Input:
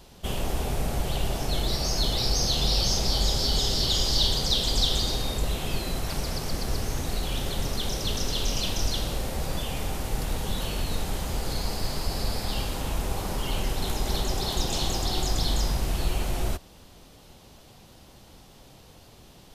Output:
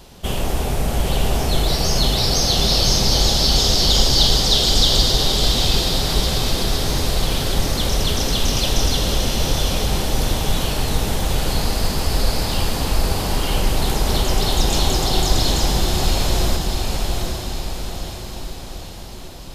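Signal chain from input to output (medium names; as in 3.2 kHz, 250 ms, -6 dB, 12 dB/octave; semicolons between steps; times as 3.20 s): echo that smears into a reverb 784 ms, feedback 56%, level -3 dB; trim +7 dB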